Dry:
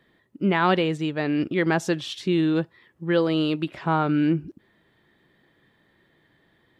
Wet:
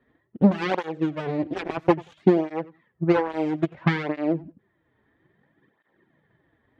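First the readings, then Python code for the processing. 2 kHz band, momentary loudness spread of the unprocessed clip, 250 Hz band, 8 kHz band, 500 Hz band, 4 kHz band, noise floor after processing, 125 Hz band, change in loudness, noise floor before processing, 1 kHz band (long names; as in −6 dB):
−4.0 dB, 6 LU, −0.5 dB, can't be measured, +0.5 dB, −9.0 dB, −70 dBFS, −0.5 dB, −1.0 dB, −65 dBFS, −2.5 dB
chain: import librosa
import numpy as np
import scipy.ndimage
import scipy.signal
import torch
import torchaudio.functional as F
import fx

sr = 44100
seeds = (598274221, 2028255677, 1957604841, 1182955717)

p1 = fx.self_delay(x, sr, depth_ms=0.95)
p2 = scipy.signal.sosfilt(scipy.signal.butter(2, 1800.0, 'lowpass', fs=sr, output='sos'), p1)
p3 = fx.transient(p2, sr, attack_db=12, sustain_db=-3)
p4 = p3 + fx.echo_feedback(p3, sr, ms=91, feedback_pct=16, wet_db=-21.0, dry=0)
y = fx.flanger_cancel(p4, sr, hz=0.6, depth_ms=6.2)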